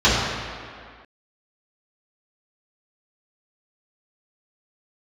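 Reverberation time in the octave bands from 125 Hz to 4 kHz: 1.6 s, 1.9 s, 1.9 s, 2.2 s, 2.1 s, 1.6 s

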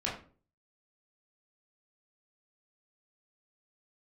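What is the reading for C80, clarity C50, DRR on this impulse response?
11.0 dB, 6.5 dB, -5.5 dB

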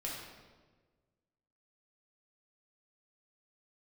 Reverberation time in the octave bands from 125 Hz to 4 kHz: 1.9 s, 1.6 s, 1.6 s, 1.2 s, 1.1 s, 1.0 s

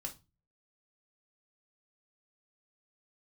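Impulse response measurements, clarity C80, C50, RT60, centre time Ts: 24.0 dB, 15.0 dB, 0.25 s, 10 ms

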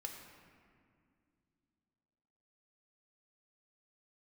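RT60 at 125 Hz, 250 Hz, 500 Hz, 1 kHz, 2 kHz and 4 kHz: 3.2 s, 3.4 s, 2.5 s, 2.1 s, 1.9 s, 1.3 s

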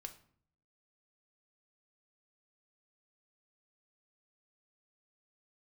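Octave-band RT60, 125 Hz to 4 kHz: 0.90 s, 0.80 s, 0.60 s, 0.55 s, 0.45 s, 0.40 s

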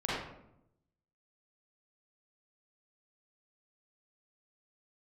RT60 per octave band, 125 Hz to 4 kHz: 1.1 s, 1.1 s, 0.85 s, 0.75 s, 0.60 s, 0.45 s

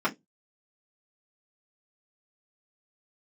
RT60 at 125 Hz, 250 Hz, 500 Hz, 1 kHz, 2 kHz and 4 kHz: 0.30 s, 0.20 s, 0.20 s, 0.15 s, 0.15 s, 0.15 s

